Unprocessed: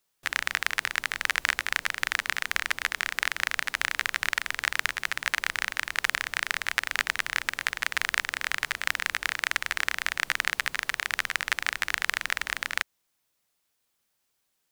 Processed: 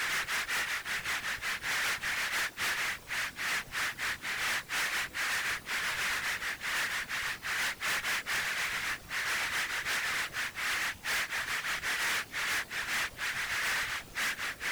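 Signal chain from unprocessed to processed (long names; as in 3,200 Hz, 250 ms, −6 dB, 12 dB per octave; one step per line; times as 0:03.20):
extreme stretch with random phases 4.4×, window 0.05 s, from 0:04.25
random phases in short frames
gain into a clipping stage and back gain 29.5 dB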